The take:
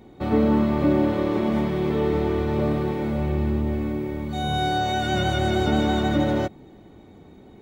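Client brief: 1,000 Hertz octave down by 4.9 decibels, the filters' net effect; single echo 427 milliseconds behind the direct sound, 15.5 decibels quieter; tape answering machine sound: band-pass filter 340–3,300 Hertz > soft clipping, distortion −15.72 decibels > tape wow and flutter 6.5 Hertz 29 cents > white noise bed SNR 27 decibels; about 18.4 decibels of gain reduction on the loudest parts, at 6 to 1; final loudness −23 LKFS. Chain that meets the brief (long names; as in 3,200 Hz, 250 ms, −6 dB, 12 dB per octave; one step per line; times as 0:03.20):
parametric band 1,000 Hz −7.5 dB
downward compressor 6 to 1, threshold −37 dBFS
band-pass filter 340–3,300 Hz
single-tap delay 427 ms −15.5 dB
soft clipping −39 dBFS
tape wow and flutter 6.5 Hz 29 cents
white noise bed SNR 27 dB
level +23.5 dB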